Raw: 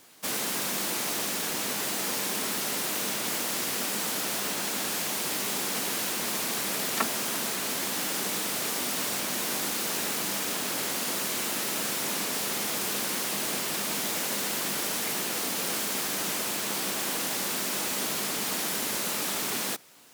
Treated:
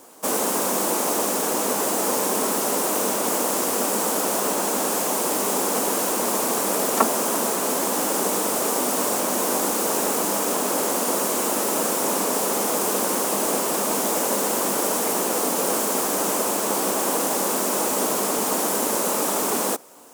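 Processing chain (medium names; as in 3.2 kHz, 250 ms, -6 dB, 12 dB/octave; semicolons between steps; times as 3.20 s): graphic EQ 125/250/500/1000/2000/4000/8000 Hz -8/+5/+8/+7/-6/-7/+4 dB; trim +5 dB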